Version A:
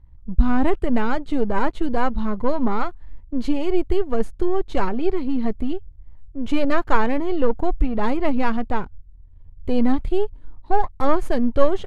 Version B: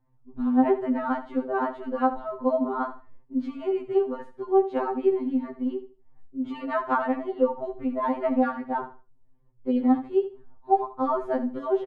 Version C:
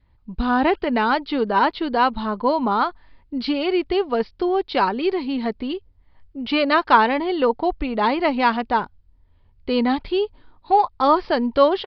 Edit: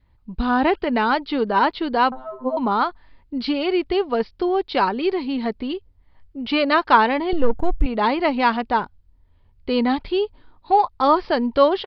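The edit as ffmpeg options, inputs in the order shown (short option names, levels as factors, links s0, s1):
-filter_complex "[2:a]asplit=3[s0][s1][s2];[s0]atrim=end=2.122[s3];[1:a]atrim=start=2.118:end=2.572[s4];[s1]atrim=start=2.568:end=7.332[s5];[0:a]atrim=start=7.328:end=7.862[s6];[s2]atrim=start=7.858[s7];[s3][s4]acrossfade=d=0.004:c1=hsin:c2=hsin[s8];[s8][s5]acrossfade=d=0.004:c1=hsin:c2=hsin[s9];[s9][s6]acrossfade=d=0.004:c1=hsin:c2=hsin[s10];[s10][s7]acrossfade=d=0.004:c1=hsin:c2=hsin"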